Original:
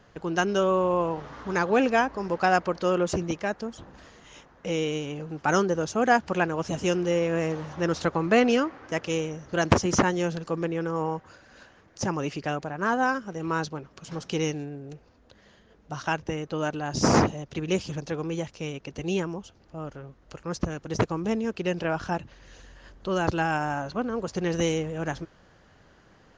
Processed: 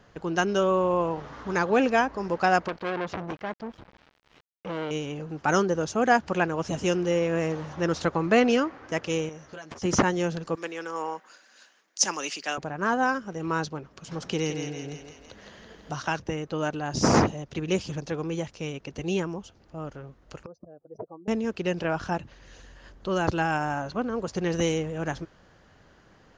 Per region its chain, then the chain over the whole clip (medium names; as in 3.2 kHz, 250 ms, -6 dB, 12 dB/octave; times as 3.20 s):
2.68–4.91 s: small samples zeroed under -43 dBFS + distance through air 230 m + transformer saturation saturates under 1.8 kHz
9.29–9.82 s: bass shelf 370 Hz -10.5 dB + compression 10:1, threshold -38 dBFS + doubling 13 ms -7 dB
10.55–12.58 s: Chebyshev high-pass 210 Hz, order 3 + tilt EQ +4 dB/octave + three bands expanded up and down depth 40%
14.22–16.20 s: thinning echo 165 ms, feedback 52%, high-pass 470 Hz, level -5.5 dB + three bands compressed up and down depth 40%
20.46–21.28 s: spectral contrast enhancement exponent 2.1 + band-pass filter 680 Hz, Q 3.7
whole clip: none